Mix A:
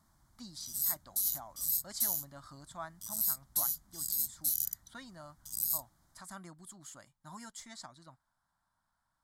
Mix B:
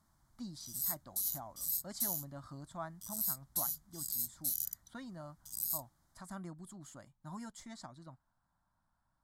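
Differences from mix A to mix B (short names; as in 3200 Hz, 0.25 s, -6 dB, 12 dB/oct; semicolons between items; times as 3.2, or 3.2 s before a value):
speech: add tilt shelf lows +6 dB, about 880 Hz; background -4.0 dB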